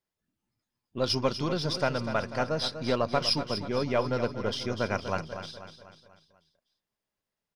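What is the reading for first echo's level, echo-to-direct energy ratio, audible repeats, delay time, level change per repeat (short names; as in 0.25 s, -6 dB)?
-10.0 dB, -9.0 dB, 5, 0.245 s, -6.0 dB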